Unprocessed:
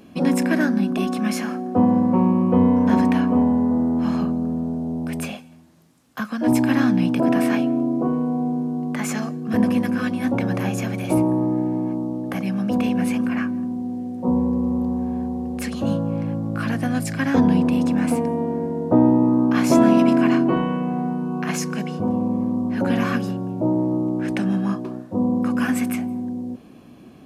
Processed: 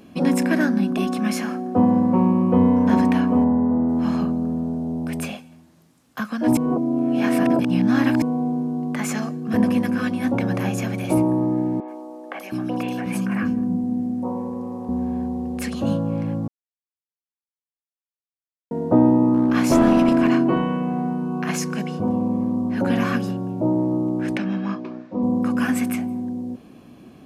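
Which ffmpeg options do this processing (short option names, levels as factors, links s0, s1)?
-filter_complex "[0:a]asettb=1/sr,asplit=3[s0][s1][s2];[s0]atrim=end=3.444[s3];[s1]atrim=start=3.44:end=3.89,asetpts=PTS-STARTPTS,afade=t=in:d=0.004:c=qsin,afade=t=out:st=0.446:d=0.004:c=qsin,lowpass=1900[s4];[s2]atrim=start=3.886[s5];[s3][s4]acrossfade=d=0.004:c1=hsin:c2=qsin[s6];[s6][s5]acrossfade=d=0.004:c1=qsin:c2=hsin,asettb=1/sr,asplit=3[s7][s8][s9];[s7]atrim=end=11.804[s10];[s8]atrim=start=11.8:end=14.89,asetpts=PTS-STARTPTS,afade=t=in:d=0.004:c=qsin,afade=t=out:st=3.086:d=0.004:c=qsin,acrossover=split=400|3500[s11][s12][s13];[s13]adelay=80[s14];[s11]adelay=720[s15];[s15][s12][s14]amix=inputs=3:normalize=0,atrim=end_sample=136269[s16];[s9]atrim=start=14.886[s17];[s10][s16]acrossfade=d=0.004:c1=hsin:c2=qsin[s18];[s18][s17]acrossfade=d=0.004:c1=qsin:c2=hsin,asettb=1/sr,asplit=3[s19][s20][s21];[s19]atrim=end=19.344[s22];[s20]atrim=start=19.34:end=20.29,asetpts=PTS-STARTPTS,afade=t=in:d=0.004:c=qsin,afade=t=out:st=0.946:d=0.004:c=qsin,aeval=exprs='clip(val(0),-1,0.224)':c=same[s23];[s21]atrim=start=20.286[s24];[s22][s23]acrossfade=d=0.004:c1=hsin:c2=qsin[s25];[s25][s24]acrossfade=d=0.004:c1=qsin:c2=hsin,asettb=1/sr,asplit=3[s26][s27][s28];[s26]atrim=end=24.374[s29];[s27]atrim=start=24.37:end=25.23,asetpts=PTS-STARTPTS,afade=t=in:d=0.004:c=qsin,afade=t=out:st=0.856:d=0.004:c=qsin,highpass=210,equalizer=f=400:t=q:w=4:g=-5,equalizer=f=750:t=q:w=4:g=-4,equalizer=f=2300:t=q:w=4:g=8,lowpass=f=5500:w=0.5412,lowpass=f=5500:w=1.3066[s30];[s28]atrim=start=25.226[s31];[s29][s30]acrossfade=d=0.004:c1=hsin:c2=qsin[s32];[s32][s31]acrossfade=d=0.004:c1=qsin:c2=hsin,asplit=5[s33][s34][s35][s36][s37];[s33]atrim=end=6.572[s38];[s34]atrim=start=6.568:end=8.222,asetpts=PTS-STARTPTS,areverse[s39];[s35]atrim=start=8.218:end=16.48,asetpts=PTS-STARTPTS,afade=t=out:st=8.258:d=0.004:c=hsin[s40];[s36]atrim=start=16.48:end=18.71,asetpts=PTS-STARTPTS,volume=0[s41];[s37]atrim=start=18.71,asetpts=PTS-STARTPTS,afade=t=in:d=0.004:c=hsin[s42];[s38][s39]acrossfade=d=0.004:c1=hsin:c2=hsin[s43];[s40][s41][s42]concat=n=3:v=0:a=1[s44];[s43][s44]acrossfade=d=0.004:c1=hsin:c2=hsin"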